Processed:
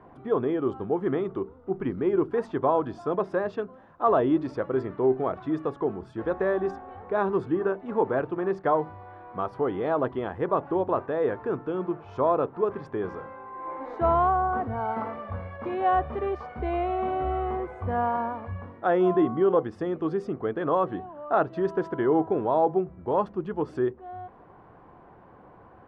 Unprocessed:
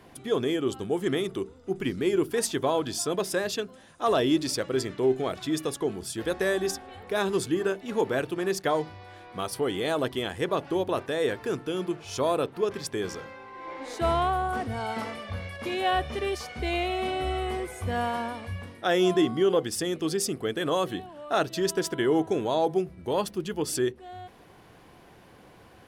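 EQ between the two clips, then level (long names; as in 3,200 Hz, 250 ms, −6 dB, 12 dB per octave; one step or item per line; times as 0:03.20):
low-pass with resonance 1,100 Hz, resonance Q 1.7
0.0 dB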